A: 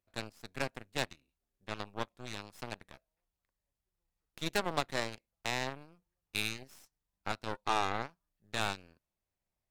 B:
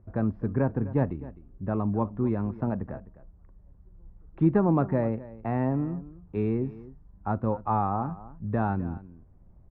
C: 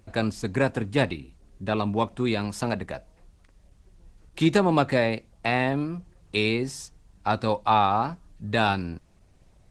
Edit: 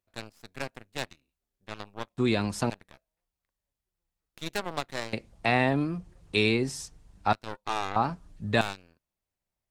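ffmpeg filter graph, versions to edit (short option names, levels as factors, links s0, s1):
-filter_complex "[2:a]asplit=3[s0][s1][s2];[0:a]asplit=4[s3][s4][s5][s6];[s3]atrim=end=2.182[s7];[s0]atrim=start=2.178:end=2.702[s8];[s4]atrim=start=2.698:end=5.132[s9];[s1]atrim=start=5.128:end=7.332[s10];[s5]atrim=start=7.328:end=7.962[s11];[s2]atrim=start=7.958:end=8.612[s12];[s6]atrim=start=8.608[s13];[s7][s8]acrossfade=d=0.004:c1=hsin:c2=hsin[s14];[s14][s9]acrossfade=d=0.004:c1=hsin:c2=hsin[s15];[s15][s10]acrossfade=d=0.004:c1=hsin:c2=hsin[s16];[s16][s11]acrossfade=d=0.004:c1=hsin:c2=hsin[s17];[s17][s12]acrossfade=d=0.004:c1=hsin:c2=hsin[s18];[s18][s13]acrossfade=d=0.004:c1=hsin:c2=hsin"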